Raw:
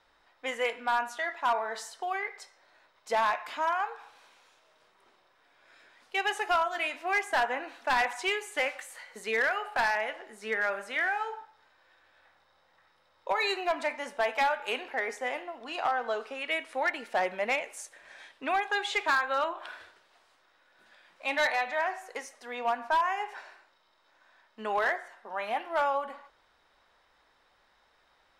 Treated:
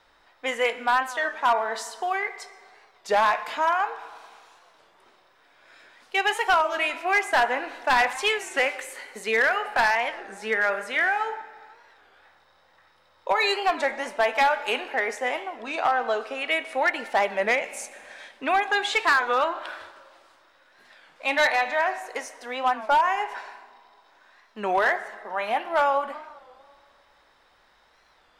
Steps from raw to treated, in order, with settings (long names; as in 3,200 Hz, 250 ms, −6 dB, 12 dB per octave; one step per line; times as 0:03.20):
convolution reverb RT60 2.1 s, pre-delay 106 ms, DRR 17.5 dB
wow of a warped record 33 1/3 rpm, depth 160 cents
level +6 dB